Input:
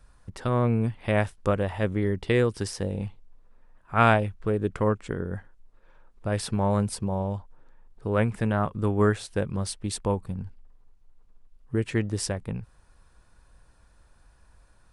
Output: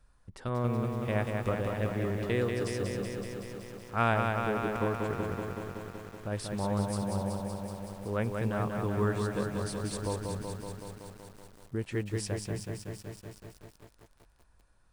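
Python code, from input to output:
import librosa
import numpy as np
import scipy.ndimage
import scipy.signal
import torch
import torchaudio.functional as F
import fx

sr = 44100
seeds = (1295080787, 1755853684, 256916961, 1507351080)

y = fx.echo_crushed(x, sr, ms=188, feedback_pct=80, bits=8, wet_db=-4)
y = F.gain(torch.from_numpy(y), -8.0).numpy()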